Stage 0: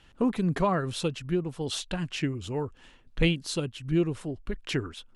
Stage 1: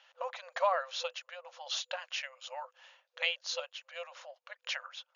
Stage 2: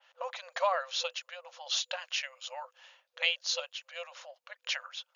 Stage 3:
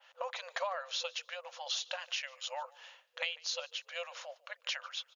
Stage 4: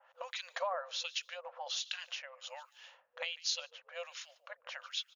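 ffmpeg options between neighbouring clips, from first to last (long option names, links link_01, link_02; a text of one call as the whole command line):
ffmpeg -i in.wav -af "afftfilt=real='re*between(b*sr/4096,500,7000)':imag='im*between(b*sr/4096,500,7000)':win_size=4096:overlap=0.75,volume=-1.5dB" out.wav
ffmpeg -i in.wav -af "adynamicequalizer=threshold=0.00398:dfrequency=2400:dqfactor=0.7:tfrequency=2400:tqfactor=0.7:attack=5:release=100:ratio=0.375:range=3:mode=boostabove:tftype=highshelf" out.wav
ffmpeg -i in.wav -filter_complex "[0:a]acompressor=threshold=-37dB:ratio=4,asplit=3[link_01][link_02][link_03];[link_02]adelay=147,afreqshift=-32,volume=-23.5dB[link_04];[link_03]adelay=294,afreqshift=-64,volume=-33.4dB[link_05];[link_01][link_04][link_05]amix=inputs=3:normalize=0,volume=2.5dB" out.wav
ffmpeg -i in.wav -filter_complex "[0:a]acrossover=split=1600[link_01][link_02];[link_01]aeval=exprs='val(0)*(1-1/2+1/2*cos(2*PI*1.3*n/s))':channel_layout=same[link_03];[link_02]aeval=exprs='val(0)*(1-1/2-1/2*cos(2*PI*1.3*n/s))':channel_layout=same[link_04];[link_03][link_04]amix=inputs=2:normalize=0,volume=3dB" out.wav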